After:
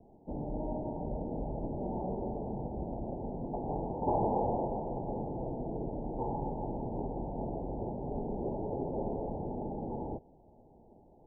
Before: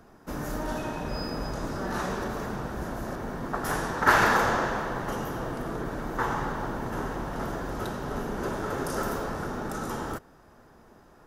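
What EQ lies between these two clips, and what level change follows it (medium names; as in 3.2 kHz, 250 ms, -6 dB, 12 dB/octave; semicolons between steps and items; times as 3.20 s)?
steep low-pass 890 Hz 96 dB/octave; -3.5 dB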